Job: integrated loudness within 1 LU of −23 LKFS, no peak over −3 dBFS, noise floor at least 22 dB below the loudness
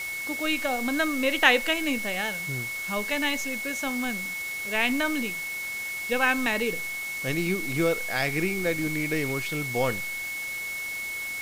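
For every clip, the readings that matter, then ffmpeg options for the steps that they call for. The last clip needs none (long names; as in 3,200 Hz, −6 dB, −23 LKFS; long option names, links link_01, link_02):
interfering tone 2,200 Hz; level of the tone −31 dBFS; background noise floor −33 dBFS; target noise floor −49 dBFS; integrated loudness −26.5 LKFS; sample peak −3.5 dBFS; target loudness −23.0 LKFS
→ -af "bandreject=frequency=2200:width=30"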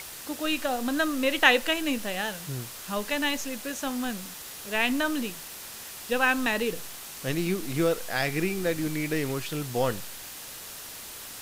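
interfering tone none found; background noise floor −42 dBFS; target noise floor −50 dBFS
→ -af "afftdn=noise_reduction=8:noise_floor=-42"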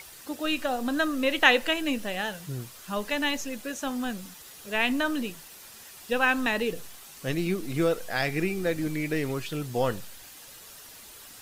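background noise floor −48 dBFS; target noise floor −50 dBFS
→ -af "afftdn=noise_reduction=6:noise_floor=-48"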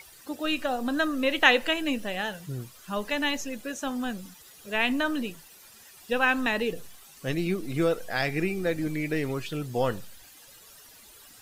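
background noise floor −52 dBFS; integrated loudness −28.0 LKFS; sample peak −3.5 dBFS; target loudness −23.0 LKFS
→ -af "volume=5dB,alimiter=limit=-3dB:level=0:latency=1"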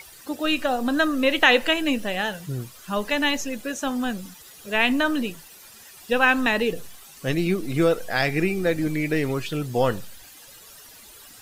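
integrated loudness −23.0 LKFS; sample peak −3.0 dBFS; background noise floor −47 dBFS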